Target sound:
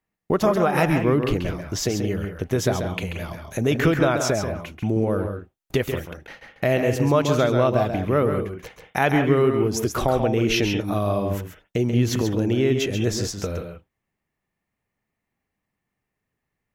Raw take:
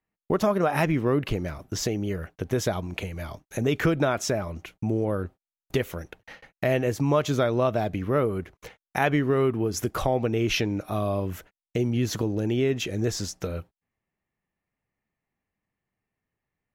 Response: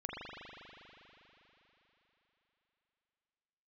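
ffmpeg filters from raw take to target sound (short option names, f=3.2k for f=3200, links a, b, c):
-filter_complex "[0:a]asplit=2[a][b];[1:a]atrim=start_sample=2205,atrim=end_sample=3528,adelay=135[c];[b][c]afir=irnorm=-1:irlink=0,volume=-3dB[d];[a][d]amix=inputs=2:normalize=0,volume=3dB"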